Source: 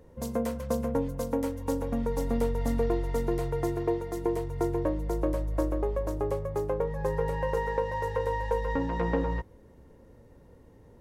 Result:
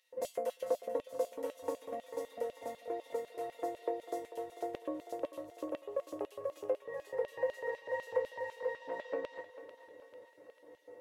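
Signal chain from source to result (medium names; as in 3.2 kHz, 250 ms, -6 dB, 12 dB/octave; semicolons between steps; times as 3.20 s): compression 5:1, threshold -34 dBFS, peak gain reduction 11 dB; feedback comb 100 Hz, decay 0.23 s, harmonics odd, mix 90%; LFO high-pass square 4 Hz 440–3200 Hz; small resonant body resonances 590/1900/2700 Hz, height 10 dB; on a send: thinning echo 444 ms, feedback 58%, high-pass 500 Hz, level -12 dB; on the sum: trim +7 dB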